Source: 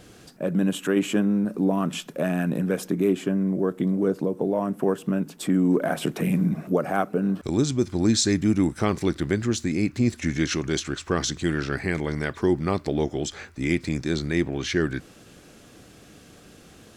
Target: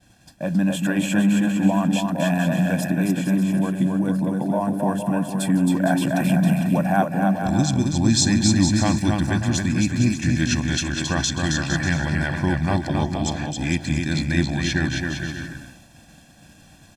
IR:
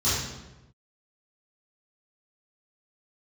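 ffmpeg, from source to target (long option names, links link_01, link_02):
-filter_complex "[0:a]aecho=1:1:1.2:0.96,aecho=1:1:270|459|591.3|683.9|748.7:0.631|0.398|0.251|0.158|0.1,agate=range=-33dB:threshold=-39dB:ratio=3:detection=peak,asettb=1/sr,asplit=3[link_01][link_02][link_03];[link_01]atrim=end=3.534[link_04];[link_02]atrim=start=3.53:end=5.69,asetpts=PTS-STARTPTS,afade=type=in:duration=0.004:curve=qsin,afade=type=out:start_time=2.156:duration=0.004:curve=qsin,equalizer=frequency=9700:width=4.7:gain=13.5[link_05];[link_03]atrim=start=5.686[link_06];[link_04][link_05]acrossfade=duration=0.004:curve1=hsin:curve2=qsin[link_07];[link_07][link_06]acrossfade=duration=0.004:curve1=qsin:curve2=hsin"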